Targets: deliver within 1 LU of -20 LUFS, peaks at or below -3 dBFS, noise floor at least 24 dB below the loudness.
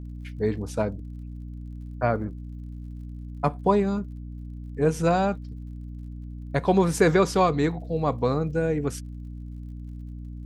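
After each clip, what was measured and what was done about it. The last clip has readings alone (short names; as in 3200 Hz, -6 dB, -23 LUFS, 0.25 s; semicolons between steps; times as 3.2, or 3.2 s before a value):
ticks 51/s; hum 60 Hz; harmonics up to 300 Hz; hum level -35 dBFS; loudness -25.0 LUFS; peak -7.5 dBFS; loudness target -20.0 LUFS
-> de-click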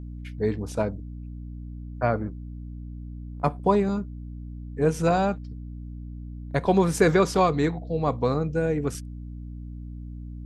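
ticks 0/s; hum 60 Hz; harmonics up to 300 Hz; hum level -35 dBFS
-> de-hum 60 Hz, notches 5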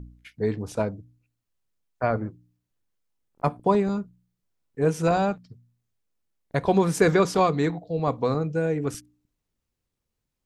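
hum none; loudness -25.0 LUFS; peak -7.0 dBFS; loudness target -20.0 LUFS
-> gain +5 dB; limiter -3 dBFS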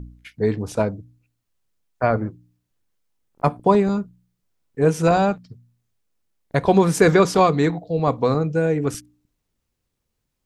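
loudness -20.0 LUFS; peak -3.0 dBFS; noise floor -77 dBFS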